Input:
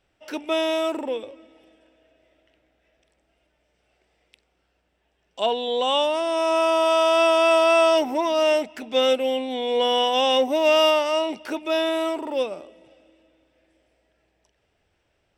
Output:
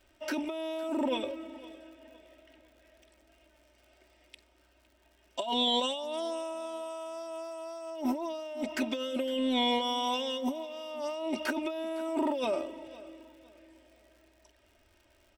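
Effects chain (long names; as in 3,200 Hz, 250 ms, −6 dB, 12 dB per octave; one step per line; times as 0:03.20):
0:05.41–0:07.90: high-shelf EQ 4,600 Hz +6.5 dB
comb filter 3.2 ms, depth 91%
dynamic equaliser 1,700 Hz, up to −7 dB, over −30 dBFS, Q 0.85
compressor whose output falls as the input rises −28 dBFS, ratio −1
surface crackle 120 per second −47 dBFS
repeating echo 509 ms, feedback 32%, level −20 dB
level −6.5 dB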